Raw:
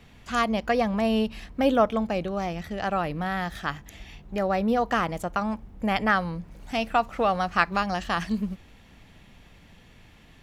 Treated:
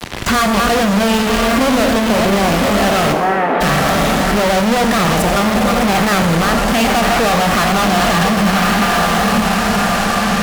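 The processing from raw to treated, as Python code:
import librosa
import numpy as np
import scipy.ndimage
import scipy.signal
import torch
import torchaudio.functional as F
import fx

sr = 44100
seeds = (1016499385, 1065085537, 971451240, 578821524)

p1 = fx.reverse_delay(x, sr, ms=252, wet_db=-11.0)
p2 = p1 + fx.echo_diffused(p1, sr, ms=1023, feedback_pct=48, wet_db=-11.0, dry=0)
p3 = fx.hpss(p2, sr, part='harmonic', gain_db=6)
p4 = fx.fuzz(p3, sr, gain_db=45.0, gate_db=-43.0)
p5 = fx.cabinet(p4, sr, low_hz=240.0, low_slope=24, high_hz=2100.0, hz=(400.0, 820.0, 1800.0), db=(5, 4, -4), at=(3.12, 3.6), fade=0.02)
p6 = fx.rev_schroeder(p5, sr, rt60_s=1.0, comb_ms=27, drr_db=7.0)
y = fx.band_squash(p6, sr, depth_pct=40)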